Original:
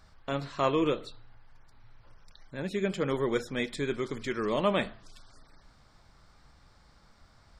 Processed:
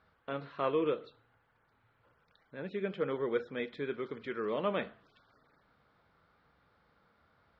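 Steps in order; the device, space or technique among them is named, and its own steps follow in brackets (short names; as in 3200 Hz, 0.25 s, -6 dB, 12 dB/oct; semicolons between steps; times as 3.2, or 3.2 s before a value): guitar cabinet (speaker cabinet 100–3500 Hz, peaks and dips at 120 Hz -4 dB, 470 Hz +7 dB, 1400 Hz +5 dB); gain -7.5 dB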